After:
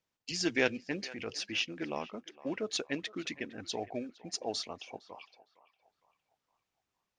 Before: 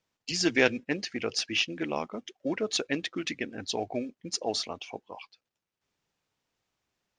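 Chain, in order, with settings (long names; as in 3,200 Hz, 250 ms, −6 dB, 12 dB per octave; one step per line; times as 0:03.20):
0:00.91–0:01.51: transient designer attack −6 dB, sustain +3 dB
on a send: feedback echo with a band-pass in the loop 460 ms, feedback 48%, band-pass 1,200 Hz, level −16 dB
on the sum: level −5.5 dB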